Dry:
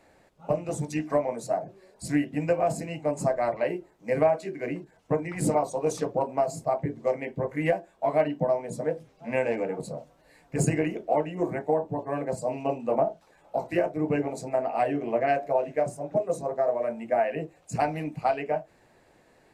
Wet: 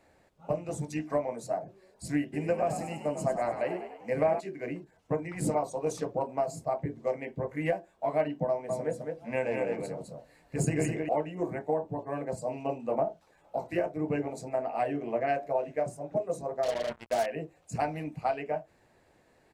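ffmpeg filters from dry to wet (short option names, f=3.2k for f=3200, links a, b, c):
-filter_complex "[0:a]asplit=3[a][b][c];[a]afade=t=out:st=2.32:d=0.02[d];[b]asplit=7[e][f][g][h][i][j][k];[f]adelay=99,afreqshift=47,volume=-9dB[l];[g]adelay=198,afreqshift=94,volume=-14.2dB[m];[h]adelay=297,afreqshift=141,volume=-19.4dB[n];[i]adelay=396,afreqshift=188,volume=-24.6dB[o];[j]adelay=495,afreqshift=235,volume=-29.8dB[p];[k]adelay=594,afreqshift=282,volume=-35dB[q];[e][l][m][n][o][p][q]amix=inputs=7:normalize=0,afade=t=in:st=2.32:d=0.02,afade=t=out:st=4.39:d=0.02[r];[c]afade=t=in:st=4.39:d=0.02[s];[d][r][s]amix=inputs=3:normalize=0,asettb=1/sr,asplit=3[t][u][v];[t]atrim=end=8.484[w];[u]atrim=start=8.48:end=11.09,asetpts=PTS-STARTPTS,afade=t=in:d=0.004:c=qsin,afade=t=out:st=2.606:d=0.004:c=qsin,aecho=1:1:208:0.631,atrim=end_sample=115101[x];[v]atrim=start=11.086[y];[w][x]acrossfade=d=0.004:c1=hsin:c2=qsin[z];[z][y]acrossfade=d=0.004:c1=qsin:c2=hsin,asettb=1/sr,asplit=3[aa][ab][ac];[aa]atrim=end=16.634[ad];[ab]atrim=start=16.63:end=17.26,asetpts=PTS-STARTPTS,afade=t=in:d=0.004:c=qsin,afade=t=out:st=0.626:d=0.004:c=qsin,acrusher=bits=4:mix=0:aa=0.5[ae];[ac]atrim=start=17.256[af];[ad][ae]acrossfade=d=0.004:c1=hsin:c2=qsin[ag];[ag][af]acrossfade=d=0.004:c1=qsin:c2=hsin,equalizer=f=79:t=o:w=0.77:g=4.5,volume=-4.5dB"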